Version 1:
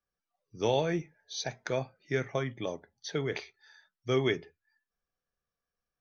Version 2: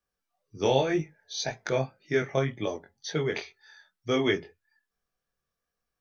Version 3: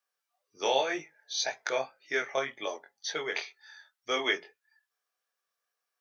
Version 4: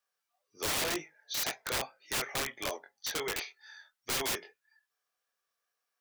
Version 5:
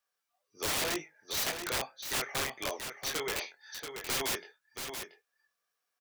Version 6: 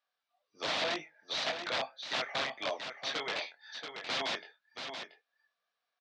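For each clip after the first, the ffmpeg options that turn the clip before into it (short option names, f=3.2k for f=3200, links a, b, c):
-af "flanger=delay=19:depth=3.6:speed=1.9,volume=7dB"
-af "highpass=690,volume=2dB"
-af "aeval=exprs='(mod(21.1*val(0)+1,2)-1)/21.1':c=same"
-af "aecho=1:1:681:0.422"
-af "highpass=190,equalizer=f=390:t=q:w=4:g=-9,equalizer=f=660:t=q:w=4:g=6,equalizer=f=3.7k:t=q:w=4:g=4,lowpass=f=4.7k:w=0.5412,lowpass=f=4.7k:w=1.3066"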